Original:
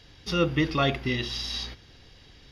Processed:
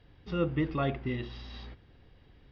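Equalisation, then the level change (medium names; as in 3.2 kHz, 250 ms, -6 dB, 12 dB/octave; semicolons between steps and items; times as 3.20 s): distance through air 120 m; tape spacing loss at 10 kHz 29 dB; -3.5 dB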